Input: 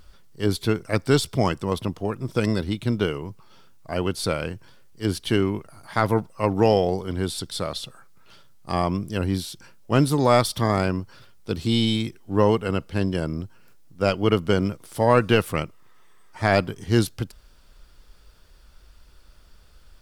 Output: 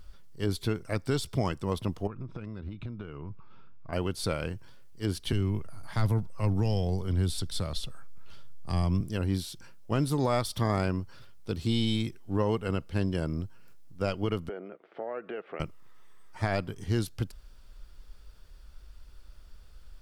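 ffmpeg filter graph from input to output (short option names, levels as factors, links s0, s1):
-filter_complex "[0:a]asettb=1/sr,asplit=3[s0][s1][s2];[s0]atrim=end=2.074[s3];[s1]atrim=start=2.07:end=3.93,asetpts=PTS-STARTPTS,afade=t=in:d=0.004:c=qsin,afade=t=out:st=1.856:d=0.004:c=qsin,lowpass=2400,aecho=1:1:0.8:0.38,atrim=end_sample=82026,acompressor=threshold=0.0282:ratio=16:attack=3.2:release=140:knee=1:detection=peak[s4];[s2]atrim=start=3.926[s5];[s3][s4]acrossfade=d=0.004:c1=hsin:c2=qsin[s6];[s6][s5]acrossfade=d=0.004:c1=qsin:c2=hsin,asettb=1/sr,asplit=3[s7][s8][s9];[s7]atrim=end=5.324[s10];[s8]atrim=start=5.32:end=9.01,asetpts=PTS-STARTPTS,afade=t=in:d=0.004:c=qsin,afade=t=out:st=3.686:d=0.004:c=qsin,acrossover=split=210|3000[s11][s12][s13];[s12]acompressor=threshold=0.02:ratio=2:attack=3.2:release=140:knee=2.83:detection=peak[s14];[s11][s14][s13]amix=inputs=3:normalize=0,lowshelf=f=90:g=10.5[s15];[s9]atrim=start=9.006[s16];[s10][s15]acrossfade=d=0.004:c1=hsin:c2=qsin[s17];[s17][s16]acrossfade=d=0.004:c1=qsin:c2=hsin,asettb=1/sr,asplit=3[s18][s19][s20];[s18]atrim=end=14.494[s21];[s19]atrim=start=14.49:end=15.6,asetpts=PTS-STARTPTS,afade=t=in:d=0.004:c=qsin,afade=t=out:st=1.106:d=0.004:c=qsin,acompressor=threshold=0.0501:ratio=10:attack=3.2:release=140:knee=1:detection=peak,highpass=f=260:w=0.5412,highpass=f=260:w=1.3066,equalizer=f=270:t=q:w=4:g=-7,equalizer=f=410:t=q:w=4:g=4,equalizer=f=680:t=q:w=4:g=5,equalizer=f=1000:t=q:w=4:g=-7,lowpass=f=2300:w=0.5412,lowpass=f=2300:w=1.3066[s22];[s20]atrim=start=15.596[s23];[s21][s22]acrossfade=d=0.004:c1=hsin:c2=qsin[s24];[s24][s23]acrossfade=d=0.004:c1=qsin:c2=hsin,lowshelf=f=78:g=9,alimiter=limit=0.237:level=0:latency=1:release=240,volume=0.562"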